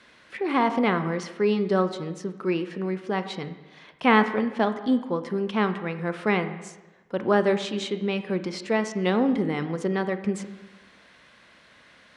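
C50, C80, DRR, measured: 11.5 dB, 12.5 dB, 9.5 dB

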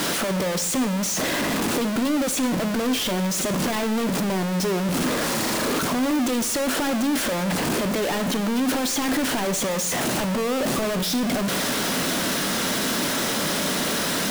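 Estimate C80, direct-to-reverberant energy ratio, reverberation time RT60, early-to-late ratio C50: 15.0 dB, 9.5 dB, non-exponential decay, 13.0 dB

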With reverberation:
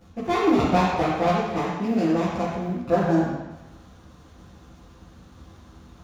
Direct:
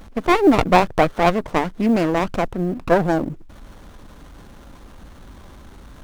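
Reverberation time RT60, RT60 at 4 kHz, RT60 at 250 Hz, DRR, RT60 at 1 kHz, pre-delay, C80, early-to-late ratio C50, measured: 1.0 s, 1.1 s, 1.1 s, −10.0 dB, 1.1 s, 3 ms, 1.5 dB, −1.0 dB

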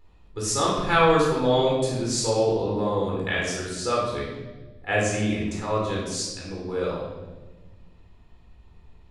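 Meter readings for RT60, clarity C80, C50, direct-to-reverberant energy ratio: 1.2 s, 4.0 dB, 1.0 dB, −4.5 dB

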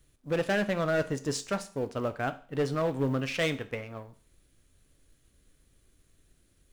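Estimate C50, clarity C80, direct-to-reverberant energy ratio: 16.0 dB, 20.5 dB, 10.5 dB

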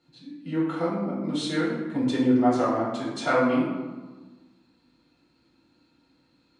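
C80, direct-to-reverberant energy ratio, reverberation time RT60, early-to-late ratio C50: 4.0 dB, −7.5 dB, 1.4 s, 1.5 dB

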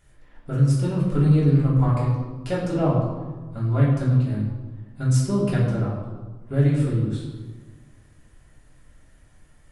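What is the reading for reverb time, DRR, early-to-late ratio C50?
1.4 s, −6.5 dB, 2.0 dB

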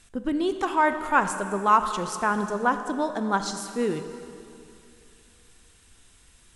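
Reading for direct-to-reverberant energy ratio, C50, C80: 8.0 dB, 9.0 dB, 9.5 dB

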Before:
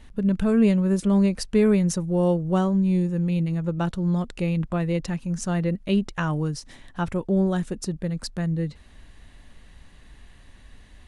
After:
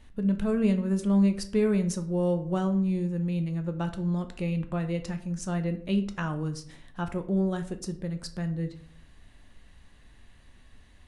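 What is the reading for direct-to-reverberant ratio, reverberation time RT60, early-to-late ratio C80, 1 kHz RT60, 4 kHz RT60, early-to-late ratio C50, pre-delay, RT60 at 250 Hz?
8.0 dB, 0.60 s, 17.0 dB, 0.50 s, 0.35 s, 13.0 dB, 9 ms, 0.75 s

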